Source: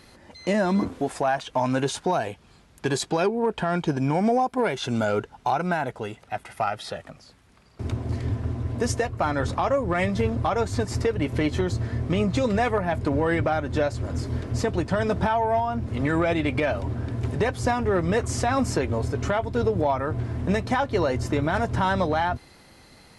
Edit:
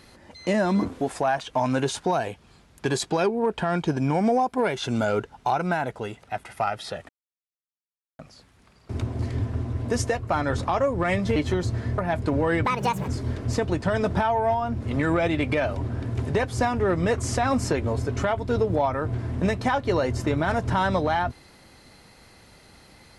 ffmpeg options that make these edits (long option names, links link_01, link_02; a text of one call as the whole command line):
ffmpeg -i in.wav -filter_complex "[0:a]asplit=6[link_01][link_02][link_03][link_04][link_05][link_06];[link_01]atrim=end=7.09,asetpts=PTS-STARTPTS,afade=type=out:start_time=7.086:duration=0.004:curve=hsin,apad=pad_dur=1.1[link_07];[link_02]atrim=start=7.09:end=10.262,asetpts=PTS-STARTPTS,afade=type=in:duration=0.004:curve=hsin[link_08];[link_03]atrim=start=11.428:end=12.052[link_09];[link_04]atrim=start=12.768:end=13.444[link_10];[link_05]atrim=start=13.44:end=14.14,asetpts=PTS-STARTPTS,asetrate=71442,aresample=44100[link_11];[link_06]atrim=start=14.136[link_12];[link_07][link_08]concat=n=2:v=0:a=1[link_13];[link_13][link_09]acrossfade=duration=0.004:curve1=hsin:curve2=hsin[link_14];[link_14][link_10]acrossfade=duration=0.004:curve1=hsin:curve2=hsin[link_15];[link_15][link_11]acrossfade=duration=0.004:curve1=hsin:curve2=hsin[link_16];[link_16][link_12]acrossfade=duration=0.004:curve1=hsin:curve2=hsin" out.wav